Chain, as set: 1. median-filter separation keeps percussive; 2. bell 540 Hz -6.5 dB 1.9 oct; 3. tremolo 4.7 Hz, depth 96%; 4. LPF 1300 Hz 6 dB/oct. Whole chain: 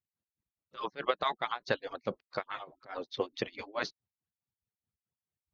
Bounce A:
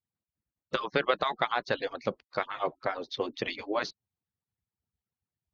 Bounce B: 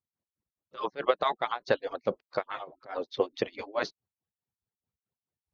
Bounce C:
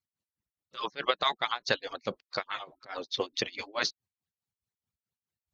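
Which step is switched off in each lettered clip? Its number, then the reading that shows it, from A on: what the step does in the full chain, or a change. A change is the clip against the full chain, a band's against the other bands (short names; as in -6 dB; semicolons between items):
3, momentary loudness spread change -4 LU; 2, 500 Hz band +5.0 dB; 4, 4 kHz band +9.0 dB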